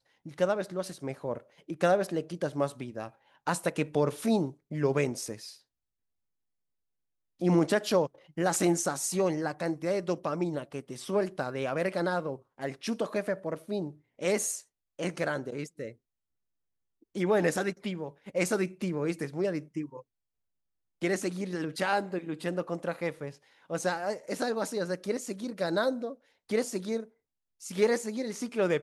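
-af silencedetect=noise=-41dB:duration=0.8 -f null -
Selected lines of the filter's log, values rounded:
silence_start: 5.52
silence_end: 7.41 | silence_duration: 1.89
silence_start: 15.92
silence_end: 17.15 | silence_duration: 1.23
silence_start: 20.00
silence_end: 21.02 | silence_duration: 1.02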